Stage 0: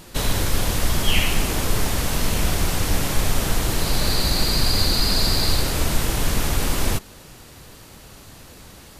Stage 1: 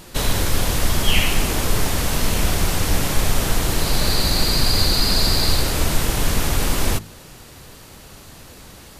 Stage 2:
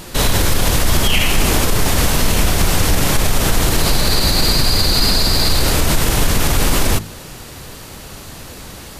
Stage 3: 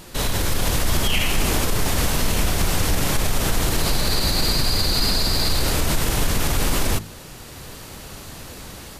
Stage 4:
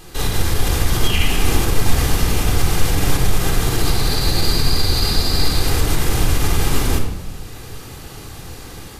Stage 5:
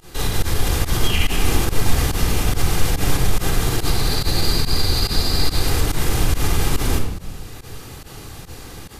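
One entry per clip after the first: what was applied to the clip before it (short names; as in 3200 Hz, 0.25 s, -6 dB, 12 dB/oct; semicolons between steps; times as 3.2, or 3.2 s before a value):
de-hum 53.89 Hz, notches 6; gain +2 dB
limiter -12.5 dBFS, peak gain reduction 9.5 dB; gain +8 dB
AGC gain up to 4.5 dB; gain -8 dB
shoebox room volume 3300 m³, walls furnished, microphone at 3.8 m; gain -2 dB
pump 142 bpm, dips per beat 1, -21 dB, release 72 ms; gain -1.5 dB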